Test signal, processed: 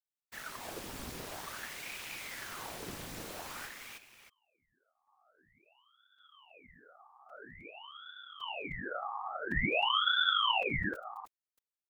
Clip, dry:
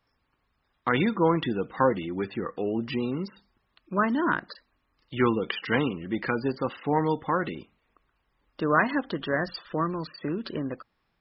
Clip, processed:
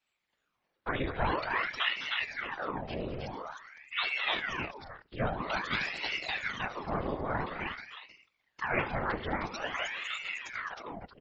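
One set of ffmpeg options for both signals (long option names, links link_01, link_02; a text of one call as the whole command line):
ffmpeg -i in.wav -af "afftfilt=real='hypot(re,im)*cos(2*PI*random(0))':imag='hypot(re,im)*sin(2*PI*random(1))':win_size=512:overlap=0.75,aecho=1:1:75|208|311|625:0.2|0.282|0.708|0.211,aeval=exprs='val(0)*sin(2*PI*1300*n/s+1300*0.9/0.49*sin(2*PI*0.49*n/s))':channel_layout=same" out.wav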